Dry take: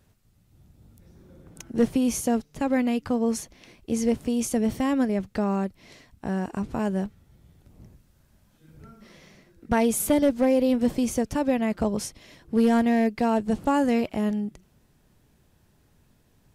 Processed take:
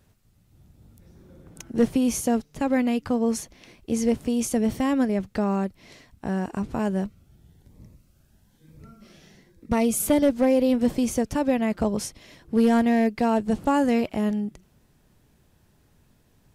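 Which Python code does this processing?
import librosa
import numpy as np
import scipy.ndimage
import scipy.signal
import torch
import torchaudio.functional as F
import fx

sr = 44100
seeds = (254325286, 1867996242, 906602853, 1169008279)

y = fx.notch_cascade(x, sr, direction='rising', hz=1.1, at=(7.04, 10.03))
y = y * 10.0 ** (1.0 / 20.0)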